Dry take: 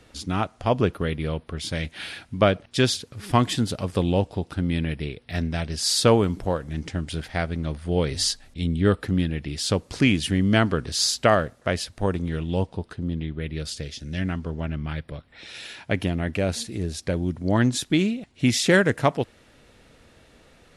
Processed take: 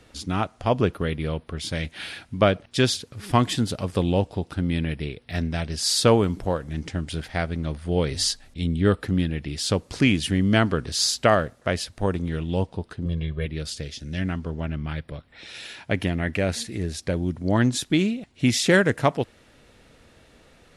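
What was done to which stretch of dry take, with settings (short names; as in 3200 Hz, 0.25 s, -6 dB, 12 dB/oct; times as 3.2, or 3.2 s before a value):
13.05–13.46 comb 1.8 ms, depth 92%
16.01–16.97 bell 1900 Hz +6 dB 0.59 oct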